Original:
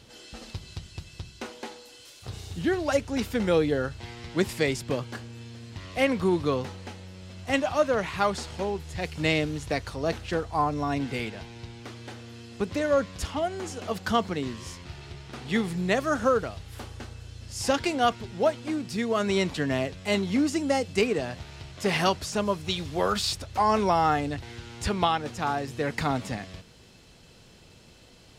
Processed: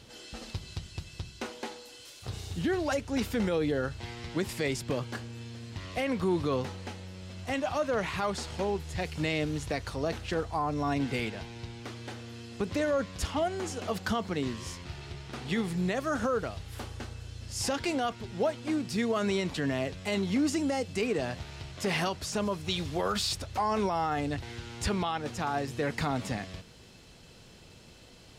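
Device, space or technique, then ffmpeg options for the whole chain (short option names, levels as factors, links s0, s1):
stacked limiters: -af "alimiter=limit=0.168:level=0:latency=1:release=313,alimiter=limit=0.0944:level=0:latency=1:release=29"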